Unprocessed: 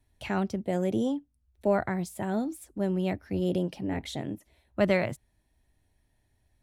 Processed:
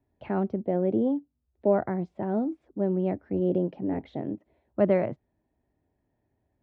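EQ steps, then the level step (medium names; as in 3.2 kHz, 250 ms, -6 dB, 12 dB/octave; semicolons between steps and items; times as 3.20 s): band-pass filter 390 Hz, Q 0.7; distance through air 230 m; +4.5 dB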